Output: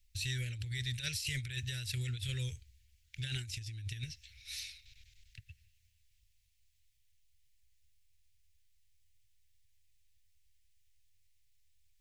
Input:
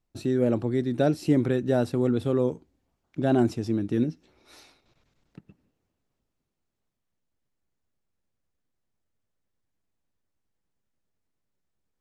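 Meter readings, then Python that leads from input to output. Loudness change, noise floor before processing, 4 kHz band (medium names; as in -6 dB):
-14.0 dB, -80 dBFS, +6.0 dB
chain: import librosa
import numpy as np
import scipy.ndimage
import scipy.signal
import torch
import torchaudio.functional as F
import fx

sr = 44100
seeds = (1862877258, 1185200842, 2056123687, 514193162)

y = scipy.signal.sosfilt(scipy.signal.cheby2(4, 40, [170.0, 1200.0], 'bandstop', fs=sr, output='sos'), x)
y = fx.over_compress(y, sr, threshold_db=-46.0, ratio=-0.5)
y = F.gain(torch.from_numpy(y), 8.5).numpy()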